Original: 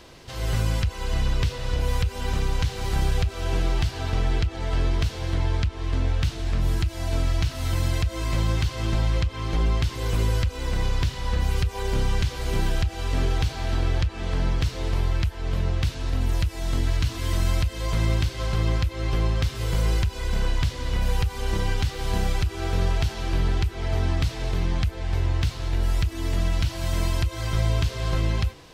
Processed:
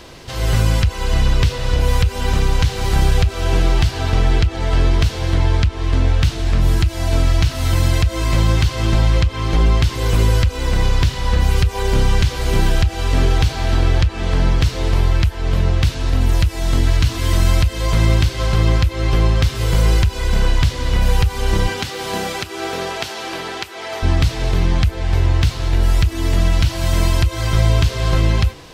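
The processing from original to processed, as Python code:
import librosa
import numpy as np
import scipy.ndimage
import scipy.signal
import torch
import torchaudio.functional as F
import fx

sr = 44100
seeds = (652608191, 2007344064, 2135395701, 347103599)

y = fx.highpass(x, sr, hz=fx.line((21.67, 190.0), (24.02, 580.0)), slope=12, at=(21.67, 24.02), fade=0.02)
y = F.gain(torch.from_numpy(y), 8.5).numpy()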